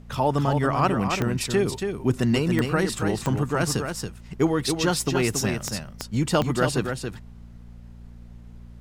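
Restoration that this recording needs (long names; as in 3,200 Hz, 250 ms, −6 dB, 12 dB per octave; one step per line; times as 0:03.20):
click removal
hum removal 58.5 Hz, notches 4
noise reduction from a noise print 27 dB
echo removal 278 ms −6 dB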